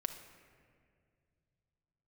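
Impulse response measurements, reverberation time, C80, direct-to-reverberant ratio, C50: 2.2 s, 10.5 dB, 5.5 dB, 8.5 dB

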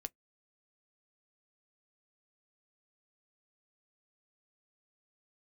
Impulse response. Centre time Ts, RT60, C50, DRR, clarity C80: 2 ms, non-exponential decay, 40.0 dB, 10.5 dB, 55.5 dB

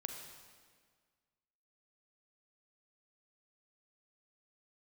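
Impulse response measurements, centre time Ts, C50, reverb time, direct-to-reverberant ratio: 48 ms, 4.5 dB, 1.7 s, 3.5 dB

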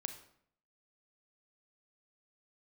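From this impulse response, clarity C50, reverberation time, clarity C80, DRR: 10.0 dB, 0.65 s, 13.0 dB, 7.5 dB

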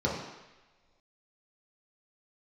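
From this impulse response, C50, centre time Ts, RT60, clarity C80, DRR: 2.5 dB, 53 ms, non-exponential decay, 5.5 dB, −5.0 dB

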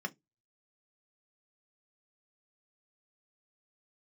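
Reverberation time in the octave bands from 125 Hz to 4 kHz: 0.25, 0.20, 0.20, 0.15, 0.15, 0.15 seconds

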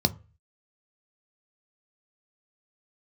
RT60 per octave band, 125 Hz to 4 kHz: 0.50, 0.30, 0.35, 0.35, 0.35, 0.20 seconds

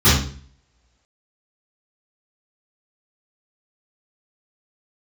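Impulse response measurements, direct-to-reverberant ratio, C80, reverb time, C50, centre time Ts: −15.0 dB, 7.5 dB, 0.45 s, 1.5 dB, 49 ms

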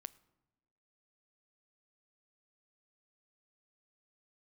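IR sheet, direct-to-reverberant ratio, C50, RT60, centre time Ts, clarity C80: 17.0 dB, 21.0 dB, 1.1 s, 2 ms, 22.5 dB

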